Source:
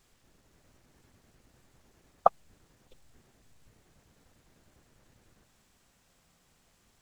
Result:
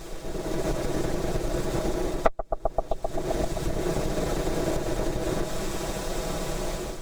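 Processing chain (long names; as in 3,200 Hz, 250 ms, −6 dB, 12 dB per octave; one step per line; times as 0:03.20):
lower of the sound and its delayed copy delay 6.1 ms
automatic gain control gain up to 9.5 dB
spectral tilt −4.5 dB per octave
notch filter 2,900 Hz, Q 24
hollow resonant body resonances 390/600/3,700 Hz, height 10 dB, ringing for 45 ms
on a send: bucket-brigade delay 130 ms, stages 1,024, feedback 67%, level −15.5 dB
on the sum: downward compressor 6 to 1, threshold −39 dBFS, peak gain reduction 37.5 dB
bass and treble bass −14 dB, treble +9 dB
boost into a limiter +29.5 dB
level −1.5 dB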